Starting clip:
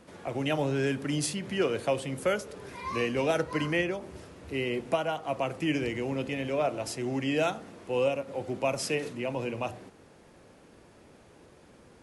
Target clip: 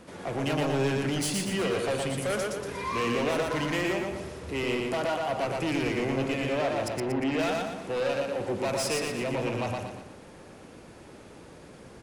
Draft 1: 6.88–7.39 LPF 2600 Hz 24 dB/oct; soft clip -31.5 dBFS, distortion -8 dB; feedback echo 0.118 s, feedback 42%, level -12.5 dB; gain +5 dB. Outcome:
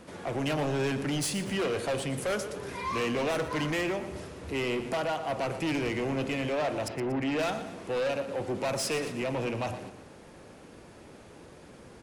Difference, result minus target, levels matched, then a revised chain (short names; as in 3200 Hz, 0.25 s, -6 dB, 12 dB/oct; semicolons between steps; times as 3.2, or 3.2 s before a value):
echo-to-direct -10 dB
6.88–7.39 LPF 2600 Hz 24 dB/oct; soft clip -31.5 dBFS, distortion -8 dB; feedback echo 0.118 s, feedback 42%, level -2.5 dB; gain +5 dB